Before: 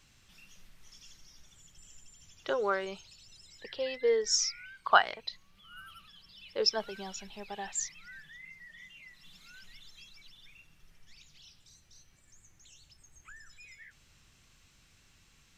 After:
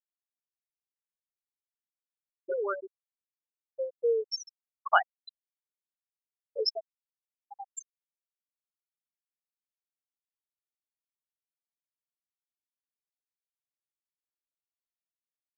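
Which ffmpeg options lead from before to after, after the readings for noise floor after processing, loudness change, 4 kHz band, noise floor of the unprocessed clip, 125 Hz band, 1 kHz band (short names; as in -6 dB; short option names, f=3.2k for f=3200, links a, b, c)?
under -85 dBFS, +0.5 dB, -5.0 dB, -64 dBFS, under -30 dB, -1.0 dB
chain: -filter_complex "[0:a]asplit=2[a][b];[b]acompressor=threshold=-40dB:ratio=10,volume=-0.5dB[c];[a][c]amix=inputs=2:normalize=0,adynamicequalizer=threshold=0.00398:dfrequency=4000:dqfactor=0.72:tfrequency=4000:tqfactor=0.72:attack=5:release=100:ratio=0.375:range=2:mode=cutabove:tftype=bell,afftfilt=real='re*gte(hypot(re,im),0.2)':imag='im*gte(hypot(re,im),0.2)':win_size=1024:overlap=0.75,volume=-1dB"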